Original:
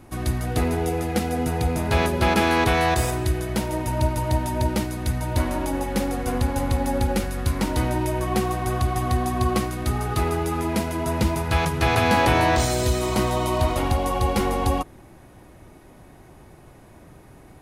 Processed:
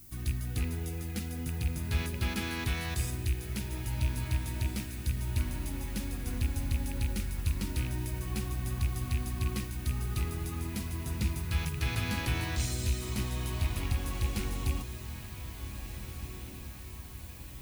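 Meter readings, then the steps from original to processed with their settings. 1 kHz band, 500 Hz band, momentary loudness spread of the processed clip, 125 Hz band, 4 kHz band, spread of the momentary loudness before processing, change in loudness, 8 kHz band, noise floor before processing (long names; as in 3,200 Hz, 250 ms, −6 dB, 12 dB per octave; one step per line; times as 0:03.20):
−21.5 dB, −21.0 dB, 10 LU, −7.5 dB, −9.5 dB, 7 LU, −11.0 dB, −8.0 dB, −48 dBFS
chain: loose part that buzzes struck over −19 dBFS, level −18 dBFS
background noise violet −45 dBFS
guitar amp tone stack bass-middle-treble 6-0-2
on a send: feedback delay with all-pass diffusion 1,752 ms, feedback 58%, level −10.5 dB
on the sum: level +5.5 dB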